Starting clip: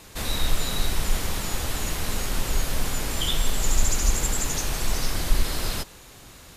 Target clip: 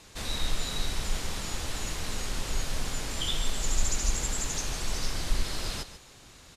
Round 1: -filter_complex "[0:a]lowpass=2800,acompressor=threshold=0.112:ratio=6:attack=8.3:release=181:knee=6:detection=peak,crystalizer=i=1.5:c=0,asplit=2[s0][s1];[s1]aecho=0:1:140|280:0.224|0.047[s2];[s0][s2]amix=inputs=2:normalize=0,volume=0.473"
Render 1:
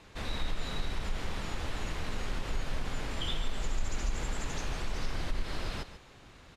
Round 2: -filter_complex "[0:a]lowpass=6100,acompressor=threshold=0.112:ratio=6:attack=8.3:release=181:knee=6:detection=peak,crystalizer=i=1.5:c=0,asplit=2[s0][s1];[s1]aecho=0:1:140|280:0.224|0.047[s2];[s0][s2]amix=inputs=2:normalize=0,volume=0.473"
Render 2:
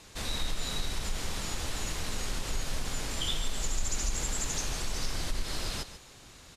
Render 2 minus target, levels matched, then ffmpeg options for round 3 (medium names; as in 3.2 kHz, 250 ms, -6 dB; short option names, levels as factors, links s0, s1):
compression: peak gain reduction +8.5 dB
-filter_complex "[0:a]lowpass=6100,crystalizer=i=1.5:c=0,asplit=2[s0][s1];[s1]aecho=0:1:140|280:0.224|0.047[s2];[s0][s2]amix=inputs=2:normalize=0,volume=0.473"